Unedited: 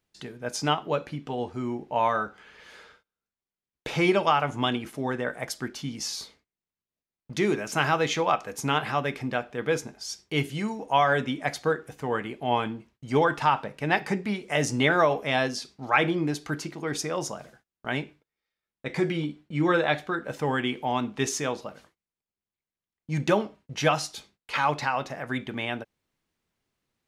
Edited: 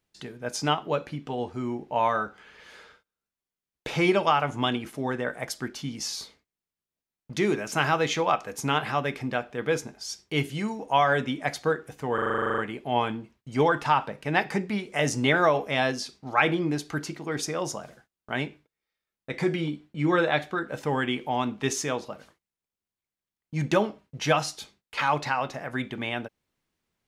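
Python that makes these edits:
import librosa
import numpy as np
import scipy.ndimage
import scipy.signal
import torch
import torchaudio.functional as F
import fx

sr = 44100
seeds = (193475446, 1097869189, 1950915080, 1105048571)

y = fx.edit(x, sr, fx.stutter(start_s=12.14, slice_s=0.04, count=12), tone=tone)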